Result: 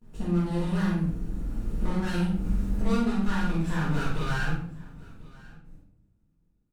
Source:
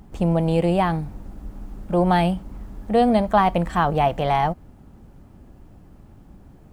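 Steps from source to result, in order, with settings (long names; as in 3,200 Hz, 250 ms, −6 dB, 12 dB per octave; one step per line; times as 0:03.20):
lower of the sound and its delayed copy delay 0.75 ms
source passing by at 0:02.45, 15 m/s, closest 6.6 metres
hum removal 63.4 Hz, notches 2
noise gate with hold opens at −54 dBFS
octave-band graphic EQ 250/1,000/8,000 Hz +4/−5/+5 dB
downward compressor 6 to 1, threshold −35 dBFS, peak gain reduction 16.5 dB
double-tracking delay 46 ms −4 dB
single-tap delay 1,045 ms −22.5 dB
rectangular room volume 88 cubic metres, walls mixed, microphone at 1.8 metres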